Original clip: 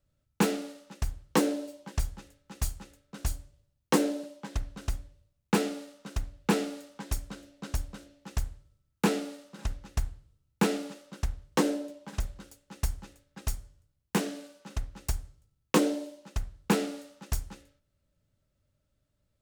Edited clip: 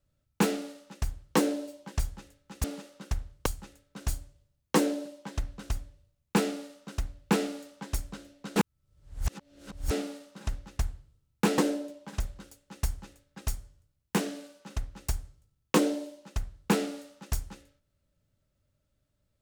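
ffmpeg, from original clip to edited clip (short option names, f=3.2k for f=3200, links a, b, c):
-filter_complex "[0:a]asplit=6[a][b][c][d][e][f];[a]atrim=end=2.642[g];[b]atrim=start=10.758:end=11.582[h];[c]atrim=start=2.638:end=7.742[i];[d]atrim=start=7.738:end=9.092,asetpts=PTS-STARTPTS,areverse[j];[e]atrim=start=9.088:end=10.762[k];[f]atrim=start=11.578[l];[g][h]acrossfade=d=0.004:c1=hsin:c2=hsin[m];[m][i]acrossfade=d=0.004:c1=hsin:c2=hsin[n];[n][j]acrossfade=d=0.004:c1=hsin:c2=hsin[o];[o][k]acrossfade=d=0.004:c1=hsin:c2=hsin[p];[p][l]acrossfade=d=0.004:c1=hsin:c2=hsin"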